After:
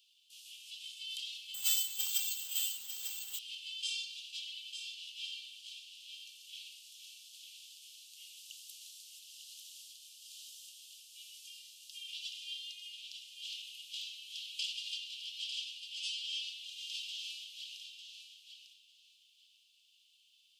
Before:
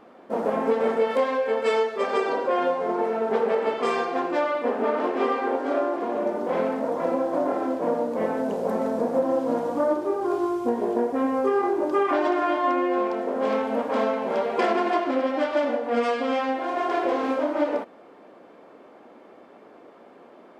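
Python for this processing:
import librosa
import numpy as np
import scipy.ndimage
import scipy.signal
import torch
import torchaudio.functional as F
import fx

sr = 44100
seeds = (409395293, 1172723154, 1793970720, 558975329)

p1 = scipy.signal.sosfilt(scipy.signal.butter(16, 2800.0, 'highpass', fs=sr, output='sos'), x)
p2 = p1 + fx.echo_feedback(p1, sr, ms=899, feedback_pct=19, wet_db=-7.5, dry=0)
p3 = fx.resample_bad(p2, sr, factor=4, down='none', up='zero_stuff', at=(1.54, 3.39))
y = p3 * librosa.db_to_amplitude(4.0)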